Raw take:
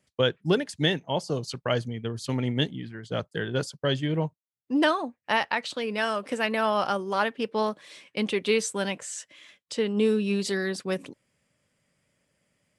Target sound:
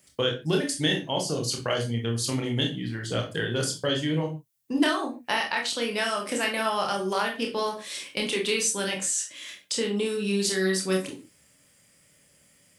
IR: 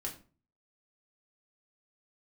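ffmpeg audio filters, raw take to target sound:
-filter_complex "[0:a]crystalizer=i=3:c=0,acompressor=threshold=-36dB:ratio=2,asplit=2[link_01][link_02];[1:a]atrim=start_sample=2205,atrim=end_sample=6174,adelay=26[link_03];[link_02][link_03]afir=irnorm=-1:irlink=0,volume=-1dB[link_04];[link_01][link_04]amix=inputs=2:normalize=0,volume=4dB"

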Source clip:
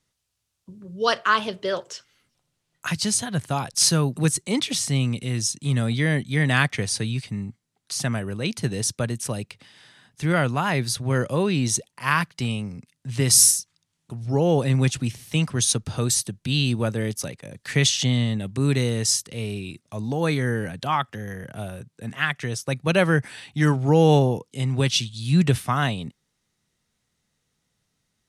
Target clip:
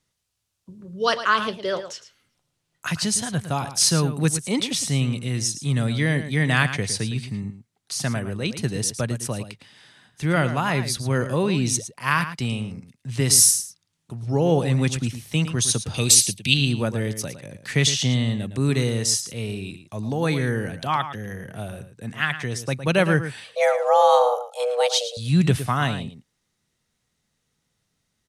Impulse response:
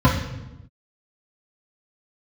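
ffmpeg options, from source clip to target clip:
-filter_complex "[0:a]asettb=1/sr,asplit=3[link_01][link_02][link_03];[link_01]atrim=end=15.944[link_04];[link_02]atrim=start=15.94:end=16.54,asetpts=PTS-STARTPTS,afade=type=in:duration=0.004:curve=qsin,afade=type=out:start_time=0.596:duration=0.004:curve=qsin,highshelf=frequency=1900:width_type=q:width=3:gain=8[link_05];[link_03]atrim=start=16.536[link_06];[link_04][link_05]acrossfade=duration=0.004:curve1=hsin:curve2=qsin[link_07];[link_07][link_06]acrossfade=duration=0.004:curve1=qsin:curve2=hsin,asettb=1/sr,asplit=3[link_08][link_09][link_10];[link_08]atrim=end=23.444[link_11];[link_09]atrim=start=23.44:end=25.17,asetpts=PTS-STARTPTS,afade=type=in:duration=0.004:curve=qsin,afade=type=out:start_time=1.726:duration=0.004:curve=qsin,afreqshift=360[link_12];[link_10]atrim=start=25.166[link_13];[link_11][link_12]acrossfade=duration=0.004:curve1=hsin:curve2=qsin[link_14];[link_14][link_13]acrossfade=duration=0.004:curve1=qsin:curve2=hsin,asplit=2[link_15][link_16];[link_16]adelay=110.8,volume=-11dB,highshelf=frequency=4000:gain=-2.49[link_17];[link_15][link_17]amix=inputs=2:normalize=0"

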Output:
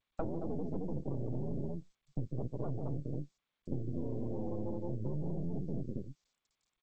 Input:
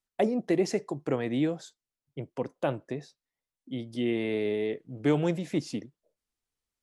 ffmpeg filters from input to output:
ffmpeg -i in.wav -filter_complex "[0:a]aecho=1:1:142.9|218.7:0.447|0.562,acrossover=split=170[link_01][link_02];[link_01]dynaudnorm=framelen=400:gausssize=3:maxgain=10dB[link_03];[link_02]aeval=exprs='val(0)*sin(2*PI*89*n/s)':channel_layout=same[link_04];[link_03][link_04]amix=inputs=2:normalize=0,highpass=frequency=110:poles=1,asoftclip=type=tanh:threshold=-30.5dB,equalizer=frequency=3100:width=0.31:gain=-10,aeval=exprs='max(val(0),0)':channel_layout=same,tiltshelf=frequency=780:gain=3.5,acompressor=threshold=-44dB:ratio=12,afftdn=noise_reduction=27:noise_floor=-55,volume=12.5dB" -ar 16000 -c:a g722 out.g722

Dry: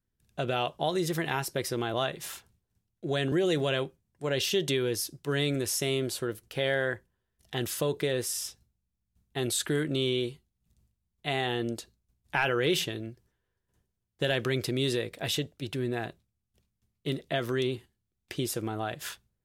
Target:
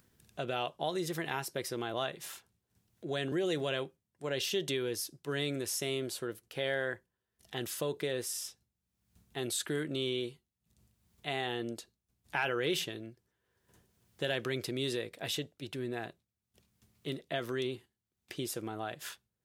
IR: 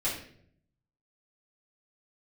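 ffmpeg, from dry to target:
-af "highpass=frequency=160:poles=1,acompressor=mode=upward:threshold=-45dB:ratio=2.5,volume=-5dB"

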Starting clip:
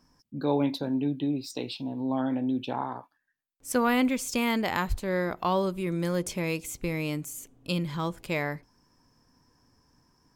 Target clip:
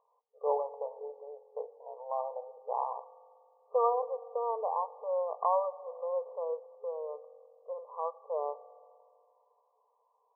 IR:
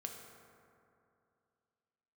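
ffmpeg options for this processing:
-filter_complex "[0:a]asplit=2[link_01][link_02];[1:a]atrim=start_sample=2205,asetrate=48510,aresample=44100[link_03];[link_02][link_03]afir=irnorm=-1:irlink=0,volume=-8.5dB[link_04];[link_01][link_04]amix=inputs=2:normalize=0,afftfilt=real='re*between(b*sr/4096,420,1200)':imag='im*between(b*sr/4096,420,1200)':win_size=4096:overlap=0.75,volume=-2dB"

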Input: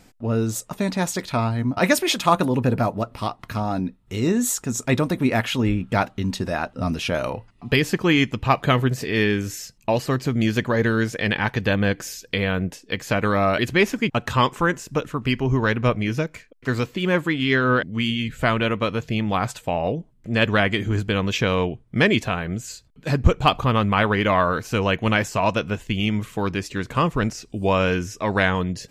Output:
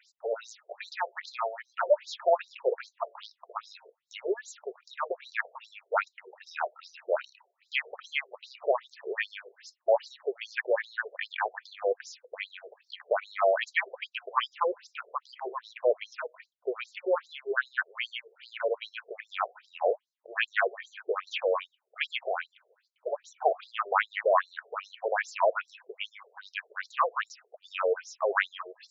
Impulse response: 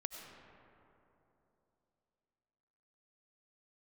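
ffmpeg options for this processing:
-filter_complex "[0:a]acrossover=split=2600[link_01][link_02];[link_02]acompressor=threshold=-41dB:ratio=4:attack=1:release=60[link_03];[link_01][link_03]amix=inputs=2:normalize=0,afftfilt=real='re*between(b*sr/1024,500*pow(5500/500,0.5+0.5*sin(2*PI*2.5*pts/sr))/1.41,500*pow(5500/500,0.5+0.5*sin(2*PI*2.5*pts/sr))*1.41)':imag='im*between(b*sr/1024,500*pow(5500/500,0.5+0.5*sin(2*PI*2.5*pts/sr))/1.41,500*pow(5500/500,0.5+0.5*sin(2*PI*2.5*pts/sr))*1.41)':win_size=1024:overlap=0.75"

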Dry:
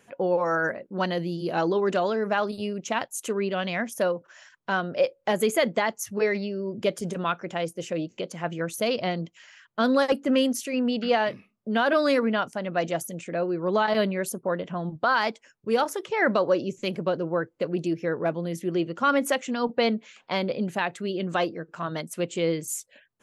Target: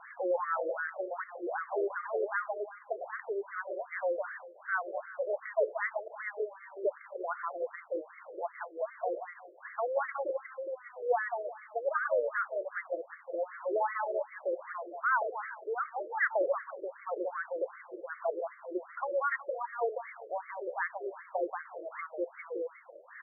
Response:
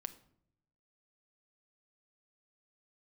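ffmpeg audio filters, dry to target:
-filter_complex "[0:a]aeval=exprs='val(0)+0.5*0.0251*sgn(val(0))':channel_layout=same,aemphasis=mode=production:type=bsi,asplit=2[link_01][link_02];[link_02]aecho=0:1:181|362|543:0.596|0.125|0.0263[link_03];[link_01][link_03]amix=inputs=2:normalize=0,afftfilt=real='re*between(b*sr/1024,450*pow(1600/450,0.5+0.5*sin(2*PI*2.6*pts/sr))/1.41,450*pow(1600/450,0.5+0.5*sin(2*PI*2.6*pts/sr))*1.41)':imag='im*between(b*sr/1024,450*pow(1600/450,0.5+0.5*sin(2*PI*2.6*pts/sr))/1.41,450*pow(1600/450,0.5+0.5*sin(2*PI*2.6*pts/sr))*1.41)':win_size=1024:overlap=0.75,volume=-5dB"

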